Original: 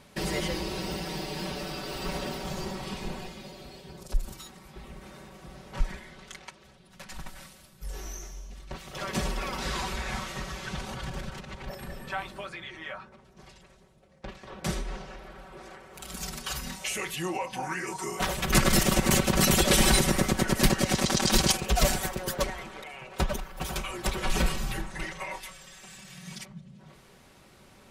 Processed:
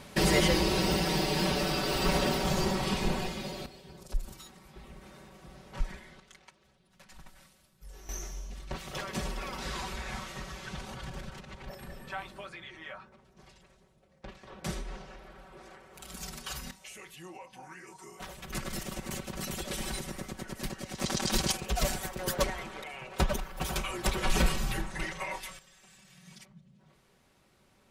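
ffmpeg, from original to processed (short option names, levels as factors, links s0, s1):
-af "asetnsamples=n=441:p=0,asendcmd='3.66 volume volume -4.5dB;6.2 volume volume -11dB;8.09 volume volume 1.5dB;9.01 volume volume -5dB;16.71 volume volume -15dB;21 volume volume -6dB;22.19 volume volume 0dB;25.59 volume volume -10.5dB',volume=2"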